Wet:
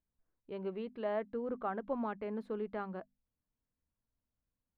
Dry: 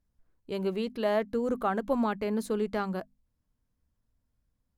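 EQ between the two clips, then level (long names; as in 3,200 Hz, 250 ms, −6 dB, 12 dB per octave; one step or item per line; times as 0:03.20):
high-frequency loss of the air 490 metres
low-shelf EQ 200 Hz −9 dB
−5.5 dB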